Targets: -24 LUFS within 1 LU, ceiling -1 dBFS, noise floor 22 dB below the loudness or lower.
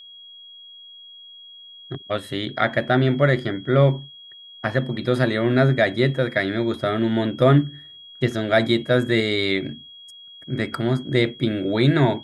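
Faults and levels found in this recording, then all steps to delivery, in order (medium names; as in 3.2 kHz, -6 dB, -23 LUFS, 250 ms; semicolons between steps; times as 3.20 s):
steady tone 3.3 kHz; tone level -41 dBFS; loudness -21.0 LUFS; peak level -4.0 dBFS; loudness target -24.0 LUFS
-> band-stop 3.3 kHz, Q 30; trim -3 dB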